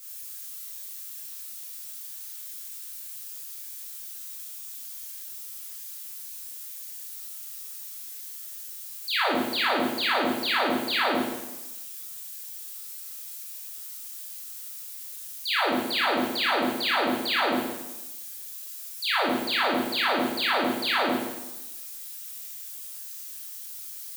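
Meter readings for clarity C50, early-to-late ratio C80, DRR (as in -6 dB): 0.0 dB, 3.0 dB, -7.0 dB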